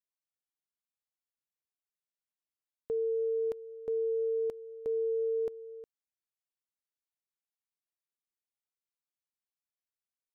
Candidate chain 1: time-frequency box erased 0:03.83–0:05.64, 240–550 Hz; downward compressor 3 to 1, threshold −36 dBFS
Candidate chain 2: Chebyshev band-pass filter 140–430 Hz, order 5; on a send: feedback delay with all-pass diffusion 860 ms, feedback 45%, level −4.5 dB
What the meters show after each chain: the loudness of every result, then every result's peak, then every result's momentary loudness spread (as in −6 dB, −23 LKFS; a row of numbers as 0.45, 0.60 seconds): −40.0, −39.5 LKFS; −27.5, −29.5 dBFS; 20, 19 LU